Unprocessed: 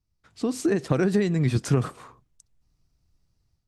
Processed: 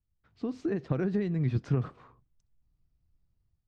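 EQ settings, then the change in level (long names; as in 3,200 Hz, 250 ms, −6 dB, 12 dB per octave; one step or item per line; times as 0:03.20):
high-frequency loss of the air 220 metres
low-shelf EQ 180 Hz +6.5 dB
−9.0 dB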